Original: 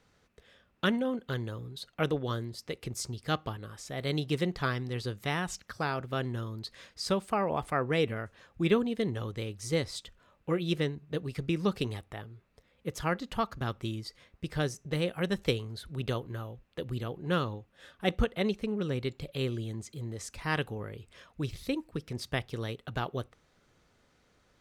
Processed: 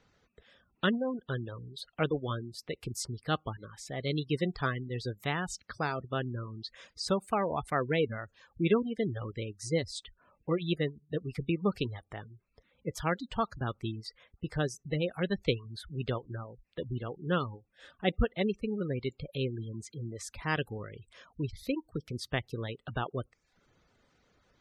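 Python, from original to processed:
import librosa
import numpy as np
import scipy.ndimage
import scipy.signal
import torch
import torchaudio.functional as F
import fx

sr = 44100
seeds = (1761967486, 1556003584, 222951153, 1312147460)

y = fx.dereverb_blind(x, sr, rt60_s=0.53)
y = fx.spec_gate(y, sr, threshold_db=-25, keep='strong')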